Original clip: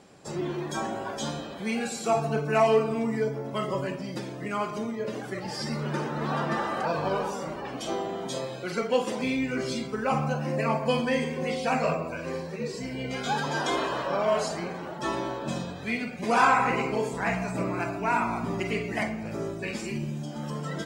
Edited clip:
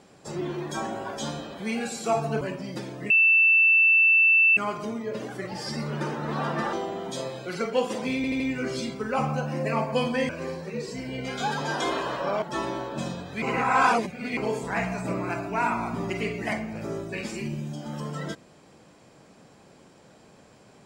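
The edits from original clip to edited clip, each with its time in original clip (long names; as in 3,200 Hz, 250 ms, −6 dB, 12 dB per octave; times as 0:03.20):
0:02.41–0:03.81: remove
0:04.50: insert tone 2,660 Hz −15 dBFS 1.47 s
0:06.66–0:07.90: remove
0:09.33: stutter 0.08 s, 4 plays
0:11.22–0:12.15: remove
0:14.28–0:14.92: remove
0:15.92–0:16.87: reverse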